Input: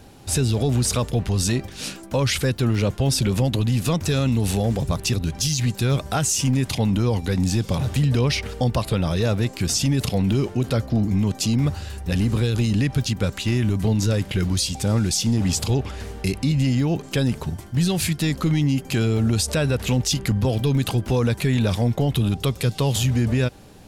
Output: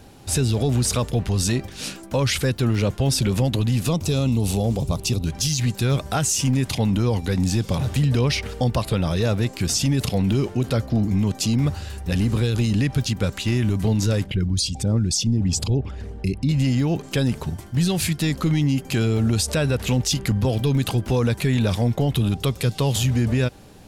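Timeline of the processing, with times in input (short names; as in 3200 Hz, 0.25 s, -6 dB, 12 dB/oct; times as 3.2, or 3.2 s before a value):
3.88–5.26 bell 1700 Hz -13 dB 0.66 oct
14.24–16.49 formant sharpening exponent 1.5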